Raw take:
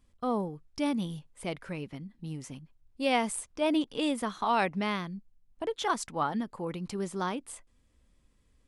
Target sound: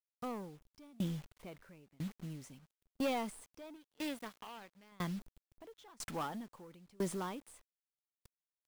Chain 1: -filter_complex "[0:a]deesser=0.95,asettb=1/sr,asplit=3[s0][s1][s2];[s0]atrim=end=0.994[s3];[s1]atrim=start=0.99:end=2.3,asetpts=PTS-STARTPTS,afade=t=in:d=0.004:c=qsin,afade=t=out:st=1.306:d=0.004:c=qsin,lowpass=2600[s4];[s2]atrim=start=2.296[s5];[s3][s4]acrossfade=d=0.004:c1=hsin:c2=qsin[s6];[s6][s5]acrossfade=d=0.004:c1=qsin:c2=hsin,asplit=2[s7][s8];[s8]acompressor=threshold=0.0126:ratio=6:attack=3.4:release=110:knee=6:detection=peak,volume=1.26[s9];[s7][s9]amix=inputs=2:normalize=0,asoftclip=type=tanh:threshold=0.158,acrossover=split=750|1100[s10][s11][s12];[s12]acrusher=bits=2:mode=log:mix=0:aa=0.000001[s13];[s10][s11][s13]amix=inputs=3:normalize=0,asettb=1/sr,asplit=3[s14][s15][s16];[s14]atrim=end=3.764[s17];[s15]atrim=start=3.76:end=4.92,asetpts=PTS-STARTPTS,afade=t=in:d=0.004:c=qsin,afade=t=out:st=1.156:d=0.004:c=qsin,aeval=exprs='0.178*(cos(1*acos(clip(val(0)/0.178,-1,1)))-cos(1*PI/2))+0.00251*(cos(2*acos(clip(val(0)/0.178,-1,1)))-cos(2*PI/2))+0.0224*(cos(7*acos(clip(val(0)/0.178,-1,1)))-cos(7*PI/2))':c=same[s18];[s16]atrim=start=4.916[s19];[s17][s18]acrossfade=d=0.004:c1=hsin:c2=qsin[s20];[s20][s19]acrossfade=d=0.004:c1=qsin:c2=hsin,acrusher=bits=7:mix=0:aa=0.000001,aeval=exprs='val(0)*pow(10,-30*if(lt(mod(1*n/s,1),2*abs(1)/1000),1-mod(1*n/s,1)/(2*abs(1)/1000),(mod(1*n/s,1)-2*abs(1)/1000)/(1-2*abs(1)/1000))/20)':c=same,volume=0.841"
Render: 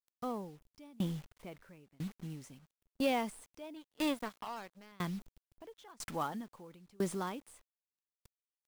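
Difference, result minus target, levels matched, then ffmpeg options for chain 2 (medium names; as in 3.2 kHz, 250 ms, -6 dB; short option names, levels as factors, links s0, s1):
saturation: distortion -12 dB
-filter_complex "[0:a]deesser=0.95,asettb=1/sr,asplit=3[s0][s1][s2];[s0]atrim=end=0.994[s3];[s1]atrim=start=0.99:end=2.3,asetpts=PTS-STARTPTS,afade=t=in:d=0.004:c=qsin,afade=t=out:st=1.306:d=0.004:c=qsin,lowpass=2600[s4];[s2]atrim=start=2.296[s5];[s3][s4]acrossfade=d=0.004:c1=hsin:c2=qsin[s6];[s6][s5]acrossfade=d=0.004:c1=qsin:c2=hsin,asplit=2[s7][s8];[s8]acompressor=threshold=0.0126:ratio=6:attack=3.4:release=110:knee=6:detection=peak,volume=1.26[s9];[s7][s9]amix=inputs=2:normalize=0,asoftclip=type=tanh:threshold=0.0531,acrossover=split=750|1100[s10][s11][s12];[s12]acrusher=bits=2:mode=log:mix=0:aa=0.000001[s13];[s10][s11][s13]amix=inputs=3:normalize=0,asettb=1/sr,asplit=3[s14][s15][s16];[s14]atrim=end=3.764[s17];[s15]atrim=start=3.76:end=4.92,asetpts=PTS-STARTPTS,afade=t=in:d=0.004:c=qsin,afade=t=out:st=1.156:d=0.004:c=qsin,aeval=exprs='0.178*(cos(1*acos(clip(val(0)/0.178,-1,1)))-cos(1*PI/2))+0.00251*(cos(2*acos(clip(val(0)/0.178,-1,1)))-cos(2*PI/2))+0.0224*(cos(7*acos(clip(val(0)/0.178,-1,1)))-cos(7*PI/2))':c=same[s18];[s16]atrim=start=4.916[s19];[s17][s18]acrossfade=d=0.004:c1=hsin:c2=qsin[s20];[s20][s19]acrossfade=d=0.004:c1=qsin:c2=hsin,acrusher=bits=7:mix=0:aa=0.000001,aeval=exprs='val(0)*pow(10,-30*if(lt(mod(1*n/s,1),2*abs(1)/1000),1-mod(1*n/s,1)/(2*abs(1)/1000),(mod(1*n/s,1)-2*abs(1)/1000)/(1-2*abs(1)/1000))/20)':c=same,volume=0.841"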